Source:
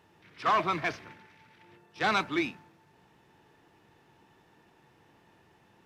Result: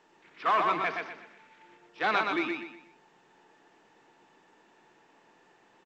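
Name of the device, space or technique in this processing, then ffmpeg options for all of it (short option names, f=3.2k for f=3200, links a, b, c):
telephone: -af "highpass=f=130:p=1,highpass=250,lowpass=3.4k,aecho=1:1:122|244|366|488:0.631|0.215|0.0729|0.0248" -ar 16000 -c:a pcm_alaw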